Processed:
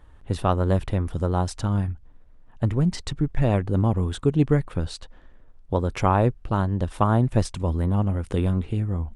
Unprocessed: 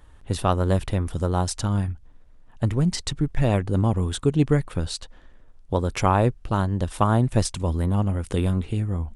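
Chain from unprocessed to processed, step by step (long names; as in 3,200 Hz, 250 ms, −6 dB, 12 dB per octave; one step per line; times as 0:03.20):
high-shelf EQ 3,700 Hz −9.5 dB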